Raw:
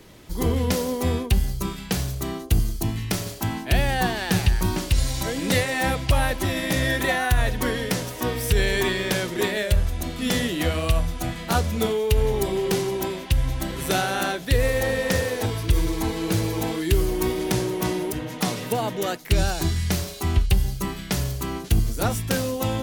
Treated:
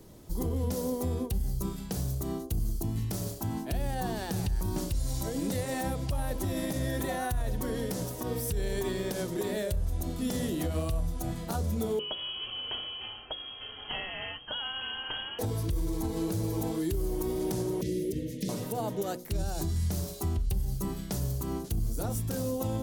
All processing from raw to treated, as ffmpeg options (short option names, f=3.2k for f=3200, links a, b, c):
-filter_complex "[0:a]asettb=1/sr,asplit=3[a][b][c];[a]atrim=end=11.994[d];[b]atrim=start=11.99:end=15.39,asetpts=PTS-STARTPTS,afade=t=in:d=0.004:c=qsin,afade=t=out:st=3.396:d=0.004:c=qsin,highpass=f=97:w=0.5412,highpass=f=97:w=1.3066,lowpass=f=2.9k:t=q:w=0.5098,lowpass=f=2.9k:t=q:w=0.6013,lowpass=f=2.9k:t=q:w=0.9,lowpass=f=2.9k:t=q:w=2.563,afreqshift=-3400,lowshelf=f=130:g=6[e];[c]atrim=start=15.386[f];[d][e]acrossfade=d=0.004:c1=hsin:c2=qsin[g];[g][f]acrossfade=d=0.004:c1=qsin:c2=hsin,asettb=1/sr,asplit=3[h][i][j];[h]atrim=end=17.814[k];[i]atrim=start=17.81:end=18.49,asetpts=PTS-STARTPTS,afade=t=in:d=0.004:c=qsin,afade=t=out:st=0.676:d=0.004:c=qsin,acrossover=split=5900[l][m];[m]acompressor=threshold=-41dB:ratio=4:attack=1:release=60[n];[l][n]amix=inputs=2:normalize=0,asuperstop=centerf=1000:order=12:qfactor=0.78[o];[j]atrim=start=18.486[p];[k][o]acrossfade=d=0.004:c1=hsin:c2=qsin[q];[q][p]acrossfade=d=0.004:c1=qsin:c2=hsin,equalizer=f=2.3k:t=o:w=2.1:g=-14,bandreject=f=60:t=h:w=6,bandreject=f=120:t=h:w=6,bandreject=f=180:t=h:w=6,bandreject=f=240:t=h:w=6,bandreject=f=300:t=h:w=6,bandreject=f=360:t=h:w=6,bandreject=f=420:t=h:w=6,bandreject=f=480:t=h:w=6,bandreject=f=540:t=h:w=6,alimiter=limit=-21dB:level=0:latency=1:release=97,volume=-1.5dB"